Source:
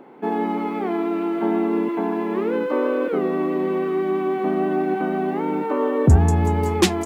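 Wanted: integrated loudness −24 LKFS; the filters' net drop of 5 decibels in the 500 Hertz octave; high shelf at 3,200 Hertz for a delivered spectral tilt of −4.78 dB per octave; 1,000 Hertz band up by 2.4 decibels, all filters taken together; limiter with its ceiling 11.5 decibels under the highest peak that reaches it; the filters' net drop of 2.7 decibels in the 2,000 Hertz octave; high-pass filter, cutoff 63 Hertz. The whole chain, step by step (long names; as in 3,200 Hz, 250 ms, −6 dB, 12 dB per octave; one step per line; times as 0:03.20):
high-pass filter 63 Hz
parametric band 500 Hz −8.5 dB
parametric band 1,000 Hz +7.5 dB
parametric band 2,000 Hz −4.5 dB
high-shelf EQ 3,200 Hz −5 dB
level +1.5 dB
brickwall limiter −14.5 dBFS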